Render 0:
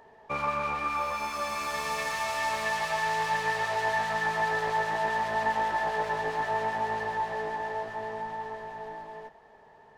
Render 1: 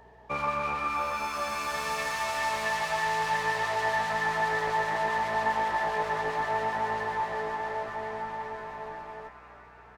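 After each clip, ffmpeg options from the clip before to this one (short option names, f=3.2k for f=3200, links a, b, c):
-filter_complex "[0:a]aeval=exprs='val(0)+0.00112*(sin(2*PI*60*n/s)+sin(2*PI*2*60*n/s)/2+sin(2*PI*3*60*n/s)/3+sin(2*PI*4*60*n/s)/4+sin(2*PI*5*60*n/s)/5)':c=same,asplit=2[a][b];[b]asplit=7[c][d][e][f][g][h][i];[c]adelay=347,afreqshift=150,volume=-14.5dB[j];[d]adelay=694,afreqshift=300,volume=-18.4dB[k];[e]adelay=1041,afreqshift=450,volume=-22.3dB[l];[f]adelay=1388,afreqshift=600,volume=-26.1dB[m];[g]adelay=1735,afreqshift=750,volume=-30dB[n];[h]adelay=2082,afreqshift=900,volume=-33.9dB[o];[i]adelay=2429,afreqshift=1050,volume=-37.8dB[p];[j][k][l][m][n][o][p]amix=inputs=7:normalize=0[q];[a][q]amix=inputs=2:normalize=0"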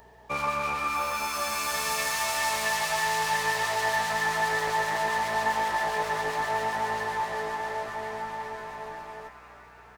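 -af "crystalizer=i=2.5:c=0"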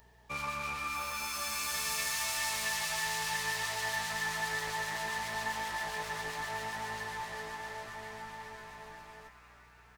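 -af "equalizer=f=580:w=0.46:g=-10.5,volume=-2.5dB"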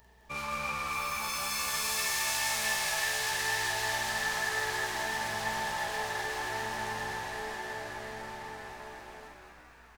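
-filter_complex "[0:a]asplit=2[a][b];[b]adelay=46,volume=-3dB[c];[a][c]amix=inputs=2:normalize=0,asplit=2[d][e];[e]asplit=6[f][g][h][i][j][k];[f]adelay=209,afreqshift=-64,volume=-6dB[l];[g]adelay=418,afreqshift=-128,volume=-12.7dB[m];[h]adelay=627,afreqshift=-192,volume=-19.5dB[n];[i]adelay=836,afreqshift=-256,volume=-26.2dB[o];[j]adelay=1045,afreqshift=-320,volume=-33dB[p];[k]adelay=1254,afreqshift=-384,volume=-39.7dB[q];[l][m][n][o][p][q]amix=inputs=6:normalize=0[r];[d][r]amix=inputs=2:normalize=0"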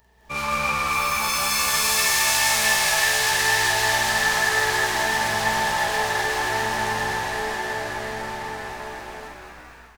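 -af "dynaudnorm=f=120:g=5:m=11dB"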